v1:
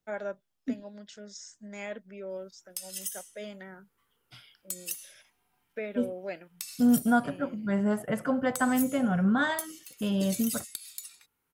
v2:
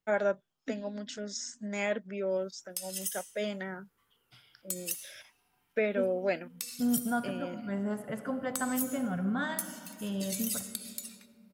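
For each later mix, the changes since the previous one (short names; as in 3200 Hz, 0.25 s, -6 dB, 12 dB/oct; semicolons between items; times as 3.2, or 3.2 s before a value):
first voice +7.0 dB; second voice -7.5 dB; reverb: on, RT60 2.3 s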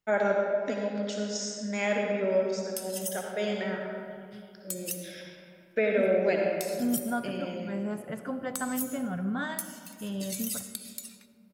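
first voice: send on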